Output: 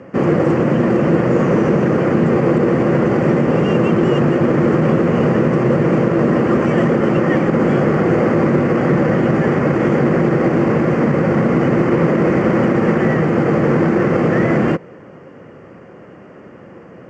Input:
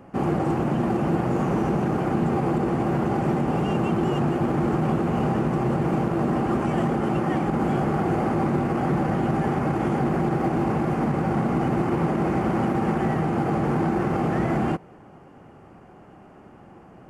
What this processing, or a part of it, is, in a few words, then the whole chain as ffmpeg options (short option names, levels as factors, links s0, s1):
car door speaker: -af "highpass=100,equalizer=f=510:t=q:w=4:g=9,equalizer=f=790:t=q:w=4:g=-10,equalizer=f=1900:t=q:w=4:g=6,equalizer=f=3800:t=q:w=4:g=-6,lowpass=f=6800:w=0.5412,lowpass=f=6800:w=1.3066,volume=2.66"